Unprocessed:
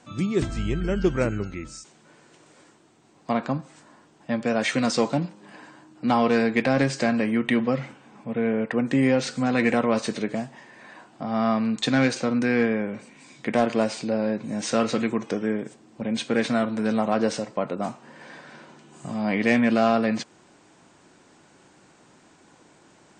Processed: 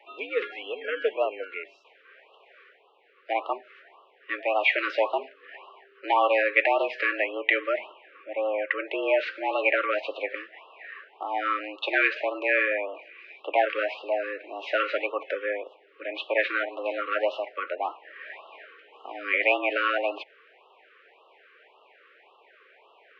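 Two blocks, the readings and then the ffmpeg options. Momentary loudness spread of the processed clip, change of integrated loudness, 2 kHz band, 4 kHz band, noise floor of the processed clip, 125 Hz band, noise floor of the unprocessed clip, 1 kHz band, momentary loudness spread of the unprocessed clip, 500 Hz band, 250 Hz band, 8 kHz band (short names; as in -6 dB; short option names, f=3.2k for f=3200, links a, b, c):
19 LU, -2.5 dB, +4.0 dB, -2.5 dB, -59 dBFS, under -40 dB, -56 dBFS, +0.5 dB, 14 LU, -1.5 dB, -18.0 dB, under -30 dB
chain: -af "crystalizer=i=6.5:c=0,highpass=f=390:t=q:w=0.5412,highpass=f=390:t=q:w=1.307,lowpass=f=2.6k:t=q:w=0.5176,lowpass=f=2.6k:t=q:w=0.7071,lowpass=f=2.6k:t=q:w=1.932,afreqshift=86,afftfilt=real='re*(1-between(b*sr/1024,750*pow(1900/750,0.5+0.5*sin(2*PI*1.8*pts/sr))/1.41,750*pow(1900/750,0.5+0.5*sin(2*PI*1.8*pts/sr))*1.41))':imag='im*(1-between(b*sr/1024,750*pow(1900/750,0.5+0.5*sin(2*PI*1.8*pts/sr))/1.41,750*pow(1900/750,0.5+0.5*sin(2*PI*1.8*pts/sr))*1.41))':win_size=1024:overlap=0.75"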